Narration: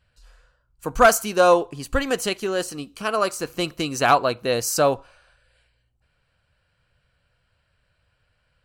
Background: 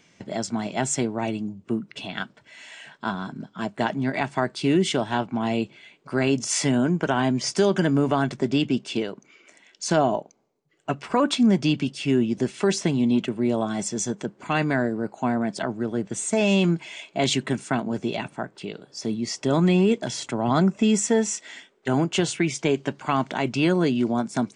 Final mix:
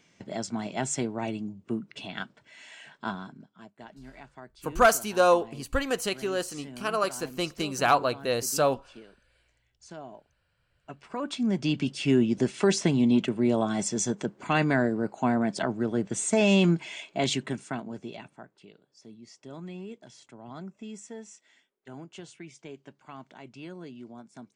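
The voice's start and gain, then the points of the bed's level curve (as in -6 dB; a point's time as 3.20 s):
3.80 s, -5.0 dB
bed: 3.10 s -5 dB
3.72 s -22.5 dB
10.52 s -22.5 dB
11.96 s -1 dB
16.92 s -1 dB
18.97 s -21.5 dB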